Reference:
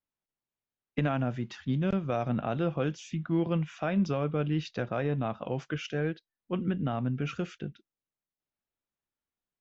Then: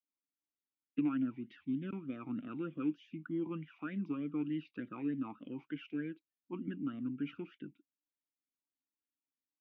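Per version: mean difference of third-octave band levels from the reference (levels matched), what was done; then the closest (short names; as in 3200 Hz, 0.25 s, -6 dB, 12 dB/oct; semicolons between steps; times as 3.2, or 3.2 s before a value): 7.0 dB: air absorption 180 m; vowel sweep i-u 3.3 Hz; gain +3 dB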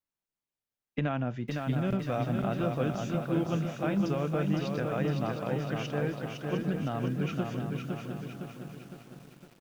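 9.0 dB: on a send: feedback echo 0.71 s, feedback 25%, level -9 dB; on the sum: lo-fi delay 0.509 s, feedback 55%, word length 9-bit, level -4 dB; gain -2 dB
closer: first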